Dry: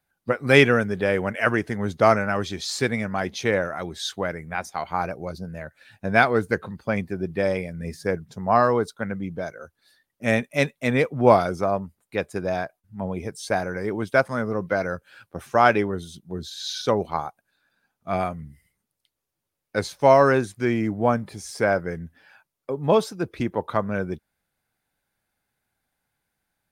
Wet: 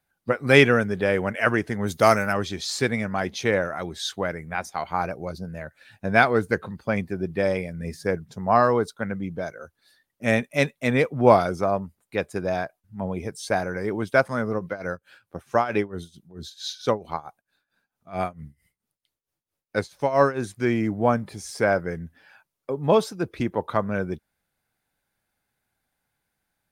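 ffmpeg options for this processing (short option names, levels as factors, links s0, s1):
-filter_complex "[0:a]asplit=3[s0][s1][s2];[s0]afade=t=out:st=1.86:d=0.02[s3];[s1]aemphasis=mode=production:type=75fm,afade=t=in:st=1.86:d=0.02,afade=t=out:st=2.32:d=0.02[s4];[s2]afade=t=in:st=2.32:d=0.02[s5];[s3][s4][s5]amix=inputs=3:normalize=0,asplit=3[s6][s7][s8];[s6]afade=t=out:st=14.58:d=0.02[s9];[s7]tremolo=f=4.5:d=0.86,afade=t=in:st=14.58:d=0.02,afade=t=out:st=20.45:d=0.02[s10];[s8]afade=t=in:st=20.45:d=0.02[s11];[s9][s10][s11]amix=inputs=3:normalize=0"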